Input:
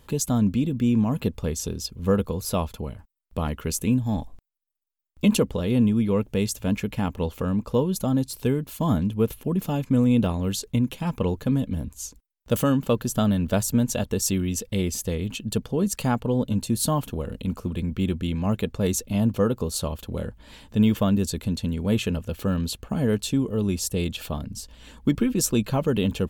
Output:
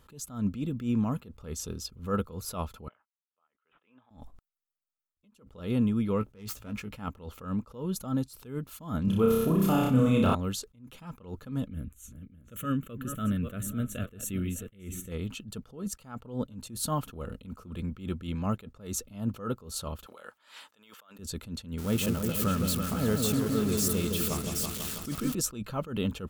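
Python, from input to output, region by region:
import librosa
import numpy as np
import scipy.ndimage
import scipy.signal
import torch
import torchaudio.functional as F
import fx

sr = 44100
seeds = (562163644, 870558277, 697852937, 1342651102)

y = fx.chain(x, sr, fx.bandpass_edges(low_hz=780.0, high_hz=2700.0),
    fx.resample_bad(factor=6, down='none', up='filtered'),
    fx.upward_expand(threshold_db=-47.0, expansion=1.5), at=(2.88, 4.11))
y = fx.chain(y, sr, fx.self_delay(depth_ms=0.092),
    fx.doubler(ms=19.0, db=-9.0), at=(6.19, 6.93))
y = fx.chain(y, sr, fx.room_flutter(wall_m=5.3, rt60_s=0.81),
    fx.env_flatten(amount_pct=50), at=(9.04, 10.35))
y = fx.chain(y, sr, fx.reverse_delay_fb(ms=302, feedback_pct=40, wet_db=-11.5),
    fx.fixed_phaser(hz=2100.0, stages=4), at=(11.68, 15.12))
y = fx.chain(y, sr, fx.highpass(hz=820.0, slope=12),
    fx.over_compress(threshold_db=-47.0, ratio=-1.0), at=(20.06, 21.19))
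y = fx.chain(y, sr, fx.crossing_spikes(level_db=-21.0),
    fx.echo_opening(ms=164, hz=750, octaves=2, feedback_pct=70, wet_db=-3), at=(21.78, 25.35))
y = fx.peak_eq(y, sr, hz=1300.0, db=12.0, octaves=0.28)
y = fx.attack_slew(y, sr, db_per_s=140.0)
y = y * librosa.db_to_amplitude(-6.0)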